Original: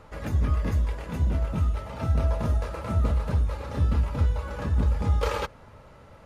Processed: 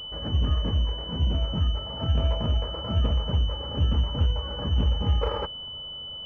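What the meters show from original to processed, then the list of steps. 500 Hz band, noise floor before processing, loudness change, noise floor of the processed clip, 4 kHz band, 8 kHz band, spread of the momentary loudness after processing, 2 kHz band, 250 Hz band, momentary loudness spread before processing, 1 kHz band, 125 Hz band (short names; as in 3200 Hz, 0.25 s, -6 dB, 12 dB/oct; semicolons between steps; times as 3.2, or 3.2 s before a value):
0.0 dB, -50 dBFS, 0.0 dB, -38 dBFS, +17.0 dB, n/a, 5 LU, -6.5 dB, 0.0 dB, 5 LU, -2.0 dB, 0.0 dB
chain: pulse-width modulation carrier 3000 Hz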